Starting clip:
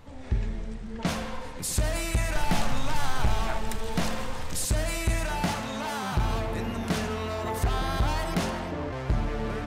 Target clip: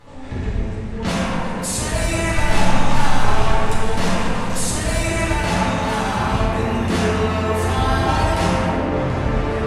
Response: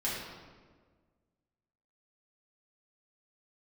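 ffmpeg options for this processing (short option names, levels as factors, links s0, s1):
-filter_complex "[0:a]lowshelf=f=110:g=-8.5,areverse,acompressor=mode=upward:threshold=0.00891:ratio=2.5,areverse[s0];[1:a]atrim=start_sample=2205,asetrate=23373,aresample=44100[s1];[s0][s1]afir=irnorm=-1:irlink=0"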